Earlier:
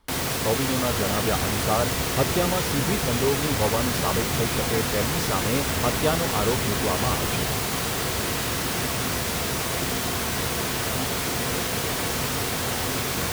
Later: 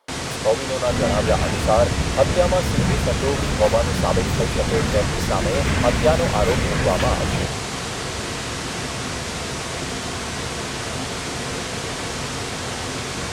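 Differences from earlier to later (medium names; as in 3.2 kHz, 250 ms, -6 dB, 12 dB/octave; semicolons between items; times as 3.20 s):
speech: add resonant high-pass 560 Hz, resonance Q 3.4; first sound: add low-pass 8.8 kHz 24 dB/octave; second sound +11.5 dB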